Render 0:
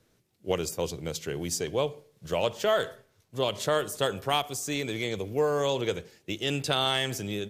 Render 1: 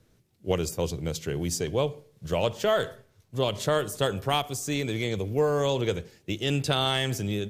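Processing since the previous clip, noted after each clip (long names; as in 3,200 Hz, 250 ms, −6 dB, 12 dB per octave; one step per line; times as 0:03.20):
low-shelf EQ 190 Hz +9.5 dB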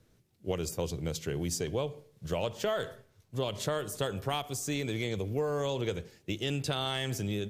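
downward compressor 3 to 1, threshold −26 dBFS, peak gain reduction 6 dB
level −2.5 dB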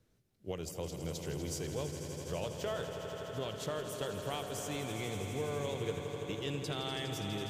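echo that builds up and dies away 82 ms, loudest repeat 5, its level −11 dB
level −7 dB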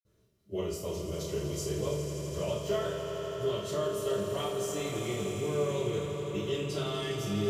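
convolution reverb RT60 0.50 s, pre-delay 46 ms
level +2 dB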